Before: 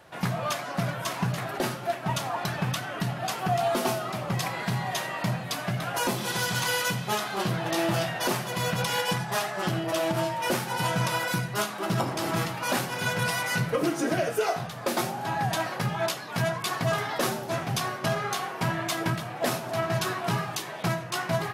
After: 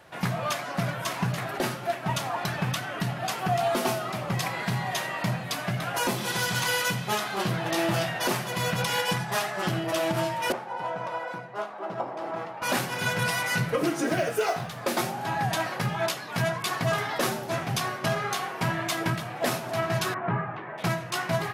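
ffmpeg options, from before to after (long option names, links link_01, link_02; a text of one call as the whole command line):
ffmpeg -i in.wav -filter_complex "[0:a]asettb=1/sr,asplit=3[link_01][link_02][link_03];[link_01]atrim=end=10.524[link_04];[link_02]atrim=start=10.52:end=12.62,asetpts=PTS-STARTPTS,afade=type=in:duration=0.004:curve=qsin,afade=type=out:start_time=2.096:duration=0.004:curve=qsin,bandpass=frequency=690:width_type=q:width=1.4[link_05];[link_03]atrim=start=12.616[link_06];[link_04][link_05]acrossfade=duration=0.004:curve1=hsin:curve2=qsin[link_07];[link_07][link_06]acrossfade=duration=0.004:curve1=qsin:curve2=hsin,asettb=1/sr,asplit=3[link_08][link_09][link_10];[link_08]atrim=end=14.054[link_11];[link_09]atrim=start=14.05:end=14.81,asetpts=PTS-STARTPTS,afade=type=in:duration=0.004:curve=qsin,afade=type=out:start_time=0.756:duration=0.004:curve=qsin,acrusher=bits=8:mode=log:mix=0:aa=0.000001[link_12];[link_10]atrim=start=14.806[link_13];[link_11][link_12]acrossfade=duration=0.004:curve1=hsin:curve2=qsin[link_14];[link_14][link_13]acrossfade=duration=0.004:curve1=qsin:curve2=hsin,asettb=1/sr,asplit=3[link_15][link_16][link_17];[link_15]atrim=end=20.144[link_18];[link_16]atrim=start=20.14:end=20.78,asetpts=PTS-STARTPTS,afade=type=in:duration=0.004:curve=qsin,afade=type=out:start_time=0.636:duration=0.004:curve=qsin,lowpass=frequency=1900:width=0.5412,lowpass=frequency=1900:width=1.3066[link_19];[link_17]atrim=start=20.776[link_20];[link_18][link_19]acrossfade=duration=0.004:curve1=hsin:curve2=qsin[link_21];[link_21][link_20]acrossfade=duration=0.004:curve1=qsin:curve2=hsin,equalizer=frequency=2100:width=1.5:gain=2" out.wav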